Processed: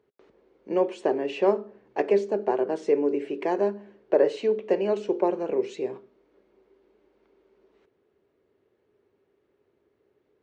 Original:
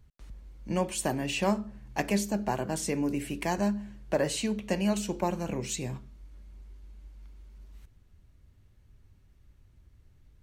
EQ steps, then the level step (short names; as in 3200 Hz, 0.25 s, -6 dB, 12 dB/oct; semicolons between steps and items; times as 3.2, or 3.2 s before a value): resonant high-pass 410 Hz, resonance Q 5.1; air absorption 77 m; tape spacing loss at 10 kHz 21 dB; +2.0 dB